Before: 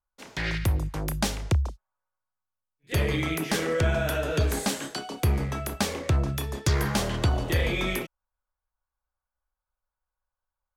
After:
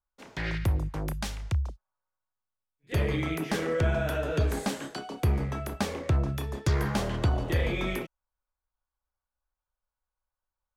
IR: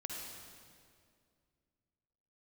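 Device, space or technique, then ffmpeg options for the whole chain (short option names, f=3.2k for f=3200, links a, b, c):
behind a face mask: -filter_complex "[0:a]asettb=1/sr,asplit=3[a][b][c];[a]atrim=end=1.134[d];[b]atrim=start=1.13:end=1.69,asetpts=PTS-STARTPTS,afade=t=in:d=0.004:c=qsin,afade=t=out:st=0.556:d=0.004:c=qsin,equalizer=f=370:t=o:w=2.5:g=-12[e];[c]atrim=start=1.686[f];[d][e]acrossfade=d=0.004:c1=hsin:c2=qsin[g];[g][f]acrossfade=d=0.004:c1=qsin:c2=hsin,highshelf=f=2.8k:g=-8,volume=-1.5dB"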